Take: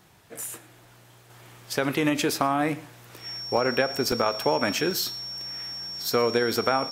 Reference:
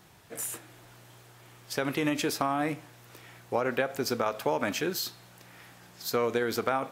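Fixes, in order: band-stop 5.5 kHz, Q 30; interpolate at 3.57/4.12/4.91 s, 1.6 ms; inverse comb 115 ms -23 dB; trim 0 dB, from 1.30 s -4.5 dB

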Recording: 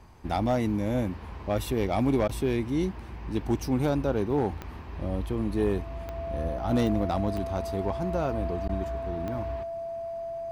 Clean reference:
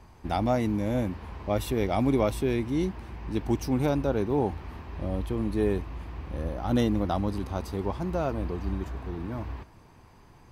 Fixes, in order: clip repair -17.5 dBFS; de-click; band-stop 670 Hz, Q 30; interpolate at 2.28/8.68 s, 10 ms

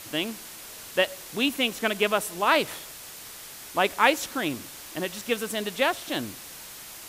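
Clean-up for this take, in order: noise print and reduce 28 dB

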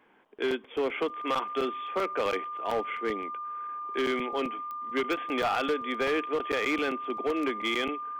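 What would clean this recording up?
clip repair -22.5 dBFS; de-click; band-stop 1.2 kHz, Q 30

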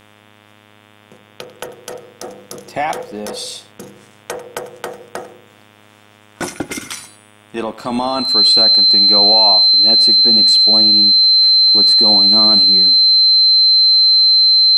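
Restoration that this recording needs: de-hum 104.7 Hz, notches 35; band-stop 4.1 kHz, Q 30; inverse comb 95 ms -18 dB

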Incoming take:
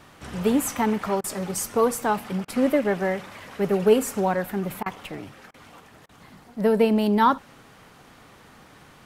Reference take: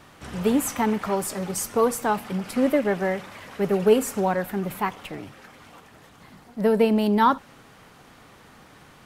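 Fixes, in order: interpolate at 1.21/2.45/4.83/5.51/6.06 s, 29 ms

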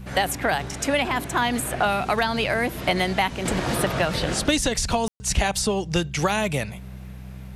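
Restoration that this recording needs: de-click; de-hum 63.7 Hz, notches 3; room tone fill 5.08–5.20 s

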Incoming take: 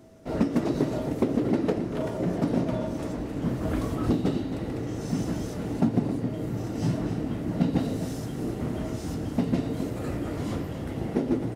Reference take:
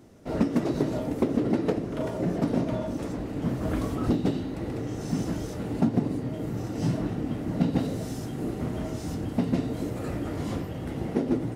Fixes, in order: band-stop 650 Hz, Q 30; inverse comb 266 ms -10.5 dB

